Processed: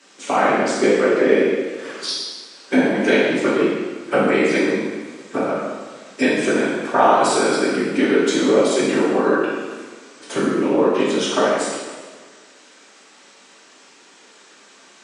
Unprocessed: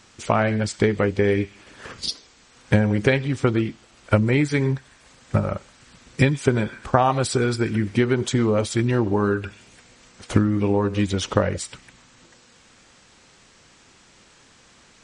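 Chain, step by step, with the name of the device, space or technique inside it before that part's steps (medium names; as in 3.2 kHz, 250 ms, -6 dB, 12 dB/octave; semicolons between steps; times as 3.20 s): whispering ghost (whisper effect; high-pass 250 Hz 24 dB/octave; reverberation RT60 1.5 s, pre-delay 3 ms, DRR -7 dB); trim -2 dB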